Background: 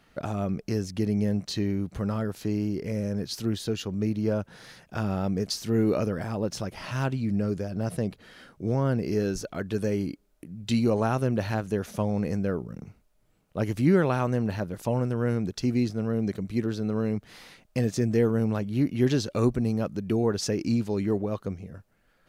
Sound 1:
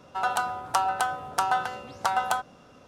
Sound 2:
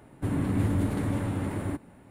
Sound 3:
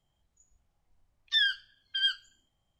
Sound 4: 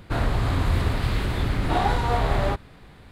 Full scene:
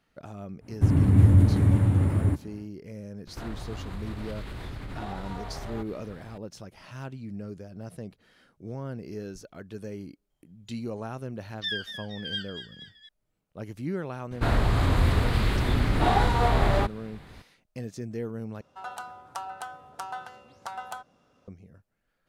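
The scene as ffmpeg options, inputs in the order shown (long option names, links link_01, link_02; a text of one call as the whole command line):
ffmpeg -i bed.wav -i cue0.wav -i cue1.wav -i cue2.wav -i cue3.wav -filter_complex "[4:a]asplit=2[link_01][link_02];[0:a]volume=-11dB[link_03];[2:a]equalizer=frequency=82:width=0.61:gain=14[link_04];[link_01]acompressor=threshold=-33dB:ratio=6:attack=3.2:release=140:knee=1:detection=peak[link_05];[3:a]asplit=7[link_06][link_07][link_08][link_09][link_10][link_11][link_12];[link_07]adelay=234,afreqshift=54,volume=-9dB[link_13];[link_08]adelay=468,afreqshift=108,volume=-14.4dB[link_14];[link_09]adelay=702,afreqshift=162,volume=-19.7dB[link_15];[link_10]adelay=936,afreqshift=216,volume=-25.1dB[link_16];[link_11]adelay=1170,afreqshift=270,volume=-30.4dB[link_17];[link_12]adelay=1404,afreqshift=324,volume=-35.8dB[link_18];[link_06][link_13][link_14][link_15][link_16][link_17][link_18]amix=inputs=7:normalize=0[link_19];[link_03]asplit=2[link_20][link_21];[link_20]atrim=end=18.614[link_22];[1:a]atrim=end=2.87,asetpts=PTS-STARTPTS,volume=-12dB[link_23];[link_21]atrim=start=21.476[link_24];[link_04]atrim=end=2.1,asetpts=PTS-STARTPTS,volume=-1.5dB,afade=type=in:duration=0.1,afade=type=out:start_time=2:duration=0.1,adelay=590[link_25];[link_05]atrim=end=3.11,asetpts=PTS-STARTPTS,volume=-1.5dB,afade=type=in:duration=0.004:curve=hsin,afade=type=out:start_time=3.106:duration=0.004:curve=hsin,adelay=3270[link_26];[link_19]atrim=end=2.79,asetpts=PTS-STARTPTS,volume=-6dB,afade=type=in:duration=0.004:curve=hsin,afade=type=out:start_time=2.786:duration=0.004:curve=hsin,adelay=10300[link_27];[link_02]atrim=end=3.11,asetpts=PTS-STARTPTS,afade=type=in:duration=0.004:curve=hsin,afade=type=out:start_time=3.106:duration=0.004:curve=hsin,adelay=14310[link_28];[link_22][link_23]acrossfade=duration=0.004:curve1=hsin:curve2=hsin[link_29];[link_29][link_24]acrossfade=duration=0.004:curve1=hsin:curve2=hsin[link_30];[link_30][link_25][link_26][link_27][link_28]amix=inputs=5:normalize=0" out.wav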